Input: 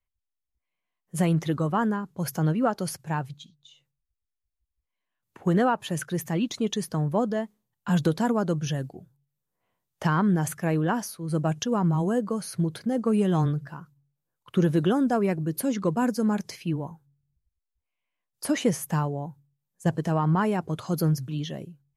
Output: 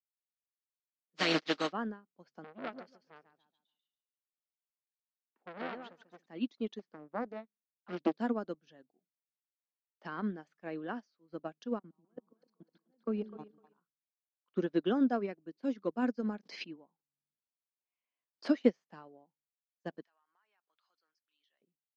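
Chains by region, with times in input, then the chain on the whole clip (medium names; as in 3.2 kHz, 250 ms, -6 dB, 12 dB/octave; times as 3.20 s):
1.16–1.71 s: spectral contrast reduction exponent 0.35 + comb 6.4 ms, depth 76%
2.44–6.26 s: feedback delay 141 ms, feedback 31%, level -5.5 dB + transformer saturation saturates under 1.5 kHz
6.79–8.14 s: peaking EQ 4.9 kHz -6.5 dB 1.3 oct + loudspeaker Doppler distortion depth 0.97 ms
11.79–13.78 s: low-pass 3.5 kHz 6 dB/octave + level held to a coarse grid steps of 22 dB + two-band feedback delay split 430 Hz, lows 141 ms, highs 253 ms, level -6 dB
16.43–18.59 s: gate -59 dBFS, range -17 dB + swell ahead of each attack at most 24 dB/s
20.02–21.62 s: Chebyshev high-pass 1.6 kHz + compression 4:1, threshold -42 dBFS
whole clip: elliptic band-pass 230–4800 Hz, stop band 40 dB; dynamic bell 950 Hz, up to -6 dB, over -43 dBFS, Q 3.3; upward expansion 2.5:1, over -40 dBFS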